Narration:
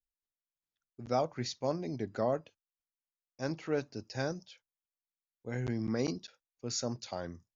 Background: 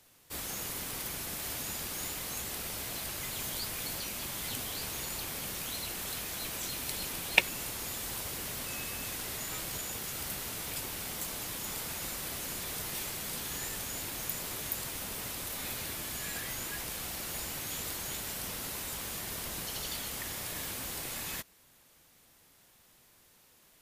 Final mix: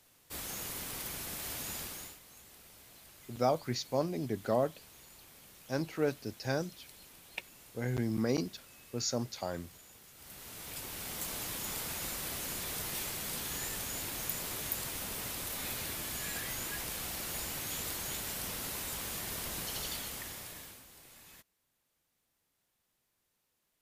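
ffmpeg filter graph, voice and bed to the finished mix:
ffmpeg -i stem1.wav -i stem2.wav -filter_complex "[0:a]adelay=2300,volume=1.5dB[link_01];[1:a]volume=15dB,afade=type=out:start_time=1.79:duration=0.4:silence=0.16788,afade=type=in:start_time=10.16:duration=1.19:silence=0.133352,afade=type=out:start_time=19.81:duration=1.04:silence=0.141254[link_02];[link_01][link_02]amix=inputs=2:normalize=0" out.wav

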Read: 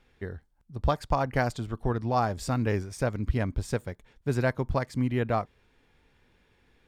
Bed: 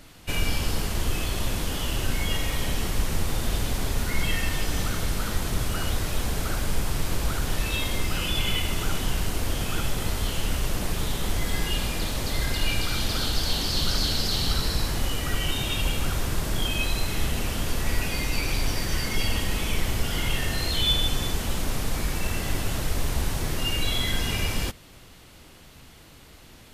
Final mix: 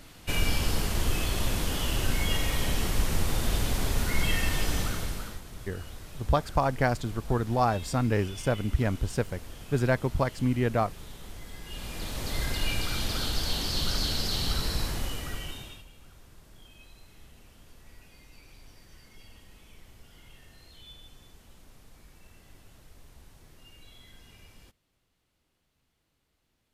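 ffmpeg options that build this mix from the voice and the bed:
ffmpeg -i stem1.wav -i stem2.wav -filter_complex "[0:a]adelay=5450,volume=1dB[link_01];[1:a]volume=12dB,afade=type=out:start_time=4.69:duration=0.73:silence=0.158489,afade=type=in:start_time=11.63:duration=0.75:silence=0.223872,afade=type=out:start_time=14.83:duration=1.02:silence=0.0707946[link_02];[link_01][link_02]amix=inputs=2:normalize=0" out.wav

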